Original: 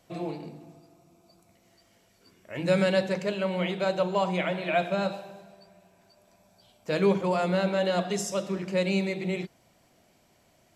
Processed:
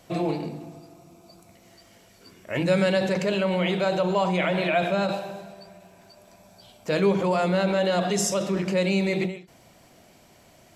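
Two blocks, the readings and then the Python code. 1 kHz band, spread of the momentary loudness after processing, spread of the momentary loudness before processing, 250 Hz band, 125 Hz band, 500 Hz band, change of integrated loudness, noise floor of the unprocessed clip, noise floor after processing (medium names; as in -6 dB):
+3.5 dB, 12 LU, 14 LU, +4.0 dB, +4.0 dB, +3.0 dB, +3.5 dB, -64 dBFS, -55 dBFS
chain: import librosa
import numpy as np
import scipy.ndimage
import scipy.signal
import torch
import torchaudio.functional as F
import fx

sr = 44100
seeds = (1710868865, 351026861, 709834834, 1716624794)

p1 = fx.over_compress(x, sr, threshold_db=-33.0, ratio=-1.0)
p2 = x + (p1 * librosa.db_to_amplitude(-1.5))
p3 = fx.end_taper(p2, sr, db_per_s=130.0)
y = p3 * librosa.db_to_amplitude(1.0)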